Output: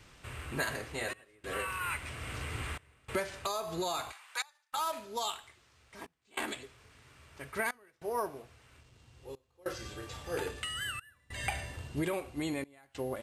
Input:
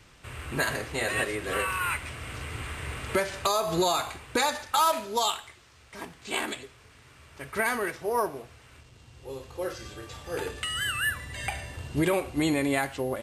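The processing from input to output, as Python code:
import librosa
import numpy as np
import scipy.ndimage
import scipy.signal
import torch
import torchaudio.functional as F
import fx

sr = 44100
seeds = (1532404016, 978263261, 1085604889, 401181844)

y = fx.highpass(x, sr, hz=860.0, slope=24, at=(4.11, 4.72), fade=0.02)
y = fx.rider(y, sr, range_db=5, speed_s=0.5)
y = fx.step_gate(y, sr, bpm=146, pattern='xxxxxxxxxxx...xx', floor_db=-24.0, edge_ms=4.5)
y = y * librosa.db_to_amplitude(-7.0)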